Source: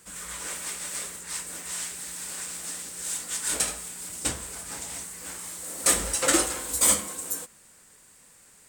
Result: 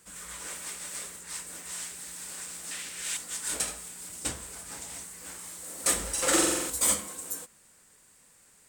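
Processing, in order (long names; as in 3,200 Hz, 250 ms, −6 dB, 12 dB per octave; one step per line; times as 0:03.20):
0:02.71–0:03.17: parametric band 2,500 Hz +12 dB 1.7 octaves
0:06.13–0:06.70: flutter between parallel walls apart 7.7 metres, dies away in 1.1 s
level −4.5 dB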